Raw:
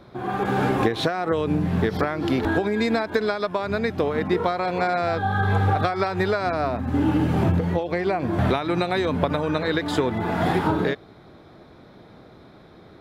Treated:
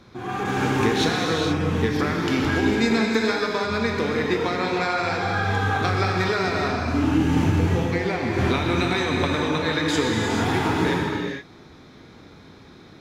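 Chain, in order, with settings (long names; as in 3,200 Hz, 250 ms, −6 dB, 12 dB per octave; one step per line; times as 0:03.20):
graphic EQ with 15 bands 630 Hz −8 dB, 2,500 Hz +4 dB, 6,300 Hz +11 dB
reverb whose tail is shaped and stops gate 500 ms flat, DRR −1.5 dB
level −1.5 dB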